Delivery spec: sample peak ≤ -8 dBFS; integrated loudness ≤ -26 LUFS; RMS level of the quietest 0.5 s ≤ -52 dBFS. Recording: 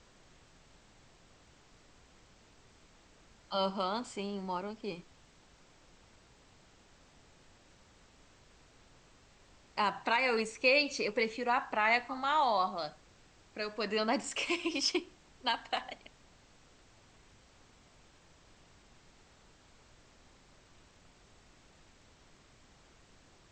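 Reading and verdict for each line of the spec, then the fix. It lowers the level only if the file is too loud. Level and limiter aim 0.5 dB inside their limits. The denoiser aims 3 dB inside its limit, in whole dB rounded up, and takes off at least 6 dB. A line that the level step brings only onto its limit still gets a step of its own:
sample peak -15.5 dBFS: pass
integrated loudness -32.5 LUFS: pass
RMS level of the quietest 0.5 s -62 dBFS: pass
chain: none needed

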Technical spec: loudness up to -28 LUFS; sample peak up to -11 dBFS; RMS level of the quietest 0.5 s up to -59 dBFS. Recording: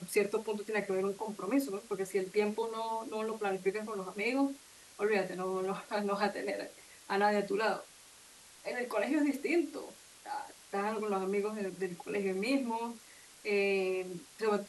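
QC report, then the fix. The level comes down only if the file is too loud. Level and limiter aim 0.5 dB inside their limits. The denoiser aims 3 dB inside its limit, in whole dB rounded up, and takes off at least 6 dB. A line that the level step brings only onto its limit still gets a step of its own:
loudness -34.5 LUFS: pass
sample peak -17.5 dBFS: pass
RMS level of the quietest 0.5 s -57 dBFS: fail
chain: noise reduction 6 dB, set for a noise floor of -57 dBFS

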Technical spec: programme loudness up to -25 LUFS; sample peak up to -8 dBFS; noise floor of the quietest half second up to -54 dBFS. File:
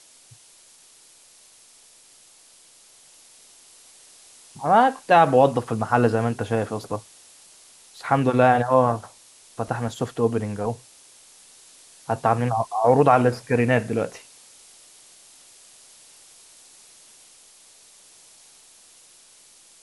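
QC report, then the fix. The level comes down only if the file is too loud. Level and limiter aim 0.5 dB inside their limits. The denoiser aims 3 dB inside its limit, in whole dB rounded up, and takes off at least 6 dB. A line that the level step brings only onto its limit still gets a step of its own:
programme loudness -21.5 LUFS: fail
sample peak -4.0 dBFS: fail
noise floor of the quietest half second -53 dBFS: fail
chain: trim -4 dB; peak limiter -8.5 dBFS

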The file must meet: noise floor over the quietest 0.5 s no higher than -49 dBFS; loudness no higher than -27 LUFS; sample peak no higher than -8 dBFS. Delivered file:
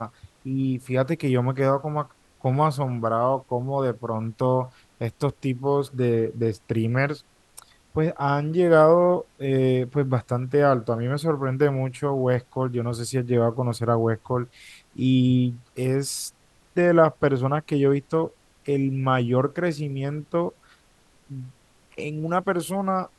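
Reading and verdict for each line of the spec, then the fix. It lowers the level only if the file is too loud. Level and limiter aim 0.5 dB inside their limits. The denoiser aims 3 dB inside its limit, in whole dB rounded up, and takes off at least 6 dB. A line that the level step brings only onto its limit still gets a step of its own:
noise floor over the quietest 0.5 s -59 dBFS: pass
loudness -24.0 LUFS: fail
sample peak -5.0 dBFS: fail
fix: trim -3.5 dB

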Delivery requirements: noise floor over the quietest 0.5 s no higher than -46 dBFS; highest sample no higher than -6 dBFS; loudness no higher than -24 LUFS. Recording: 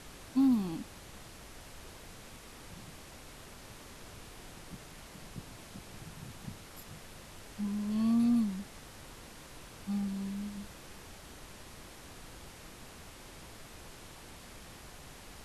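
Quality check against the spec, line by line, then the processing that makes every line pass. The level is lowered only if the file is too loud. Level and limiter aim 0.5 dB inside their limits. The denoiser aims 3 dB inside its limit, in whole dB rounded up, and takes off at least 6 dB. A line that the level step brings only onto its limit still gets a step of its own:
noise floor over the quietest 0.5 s -50 dBFS: pass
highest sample -19.0 dBFS: pass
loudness -35.0 LUFS: pass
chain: none needed

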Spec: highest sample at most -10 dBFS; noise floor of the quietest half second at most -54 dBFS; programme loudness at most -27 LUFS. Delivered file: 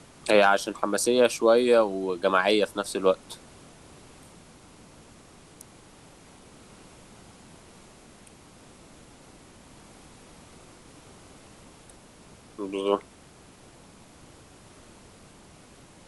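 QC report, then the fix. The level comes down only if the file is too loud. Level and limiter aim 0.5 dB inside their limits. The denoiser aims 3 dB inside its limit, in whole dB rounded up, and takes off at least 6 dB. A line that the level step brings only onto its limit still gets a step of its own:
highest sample -6.5 dBFS: fail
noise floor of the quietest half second -52 dBFS: fail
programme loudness -23.5 LUFS: fail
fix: trim -4 dB

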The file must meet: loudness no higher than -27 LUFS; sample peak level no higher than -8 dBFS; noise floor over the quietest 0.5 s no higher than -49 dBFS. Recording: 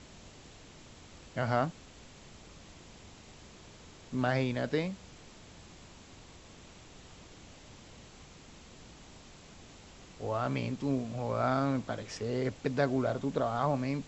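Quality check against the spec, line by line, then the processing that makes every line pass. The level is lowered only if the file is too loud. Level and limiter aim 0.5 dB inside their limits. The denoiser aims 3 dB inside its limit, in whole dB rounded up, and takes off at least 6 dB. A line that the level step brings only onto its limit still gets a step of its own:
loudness -33.0 LUFS: pass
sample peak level -14.5 dBFS: pass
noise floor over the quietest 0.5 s -53 dBFS: pass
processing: none needed

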